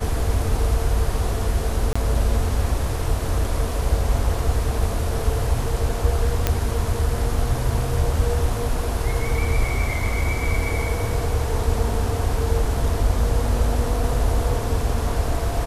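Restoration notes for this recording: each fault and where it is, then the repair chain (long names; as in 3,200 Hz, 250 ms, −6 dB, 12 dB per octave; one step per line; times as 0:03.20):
0:01.93–0:01.96: drop-out 25 ms
0:06.47: click −4 dBFS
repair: click removal
repair the gap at 0:01.93, 25 ms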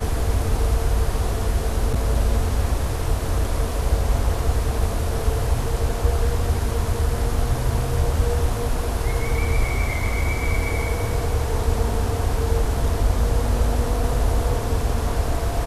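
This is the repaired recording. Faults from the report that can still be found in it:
none of them is left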